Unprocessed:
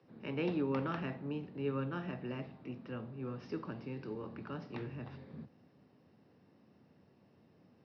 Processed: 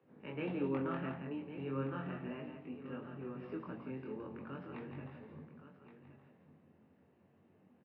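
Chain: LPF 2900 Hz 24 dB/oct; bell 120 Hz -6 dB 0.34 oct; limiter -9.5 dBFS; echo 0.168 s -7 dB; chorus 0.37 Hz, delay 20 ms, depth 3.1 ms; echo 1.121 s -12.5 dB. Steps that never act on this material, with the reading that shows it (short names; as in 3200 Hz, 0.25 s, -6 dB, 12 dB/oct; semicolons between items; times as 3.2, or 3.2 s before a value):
limiter -9.5 dBFS: input peak -22.0 dBFS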